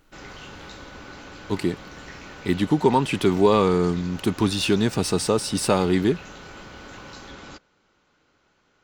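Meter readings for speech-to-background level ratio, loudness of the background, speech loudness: 19.0 dB, −41.0 LKFS, −22.0 LKFS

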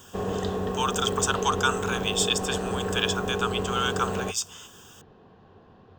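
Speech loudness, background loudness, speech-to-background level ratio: −27.5 LKFS, −30.0 LKFS, 2.5 dB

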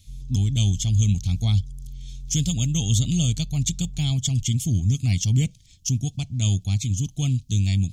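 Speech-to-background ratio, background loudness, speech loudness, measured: 16.5 dB, −40.0 LKFS, −23.5 LKFS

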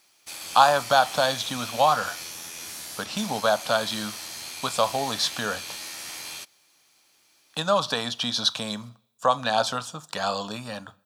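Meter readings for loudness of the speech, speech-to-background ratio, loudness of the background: −25.0 LKFS, 10.0 dB, −35.0 LKFS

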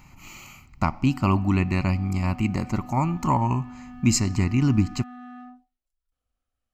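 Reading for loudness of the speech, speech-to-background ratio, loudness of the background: −24.0 LKFS, 19.0 dB, −43.0 LKFS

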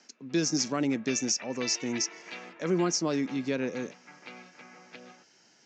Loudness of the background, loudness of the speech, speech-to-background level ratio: −44.5 LKFS, −29.5 LKFS, 15.0 dB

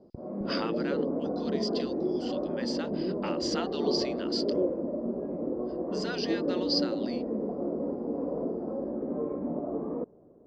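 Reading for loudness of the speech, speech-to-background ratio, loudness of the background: −36.5 LKFS, −4.5 dB, −32.0 LKFS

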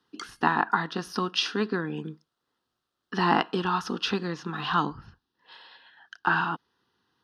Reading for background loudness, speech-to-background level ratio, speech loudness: −47.5 LKFS, 19.5 dB, −28.0 LKFS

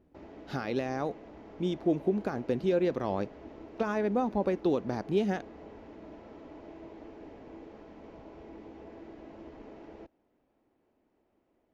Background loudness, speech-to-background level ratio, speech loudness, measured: −49.0 LKFS, 17.5 dB, −31.5 LKFS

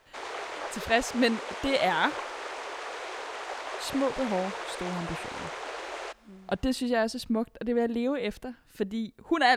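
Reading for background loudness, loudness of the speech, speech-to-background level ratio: −37.0 LKFS, −29.5 LKFS, 7.5 dB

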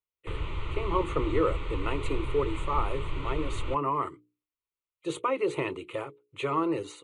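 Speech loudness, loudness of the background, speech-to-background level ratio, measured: −31.5 LKFS, −36.5 LKFS, 5.0 dB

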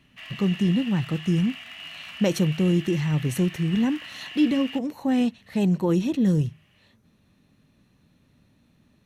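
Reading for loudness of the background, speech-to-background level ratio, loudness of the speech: −38.0 LKFS, 13.5 dB, −24.5 LKFS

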